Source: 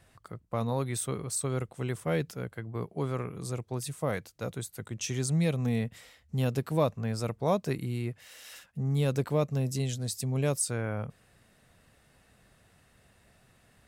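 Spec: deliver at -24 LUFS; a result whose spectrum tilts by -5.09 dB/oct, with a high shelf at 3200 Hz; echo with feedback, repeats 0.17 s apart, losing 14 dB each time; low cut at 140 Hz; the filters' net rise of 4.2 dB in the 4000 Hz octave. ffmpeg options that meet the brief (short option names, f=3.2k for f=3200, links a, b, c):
-af "highpass=140,highshelf=f=3.2k:g=-4.5,equalizer=f=4k:t=o:g=8.5,aecho=1:1:170|340:0.2|0.0399,volume=9dB"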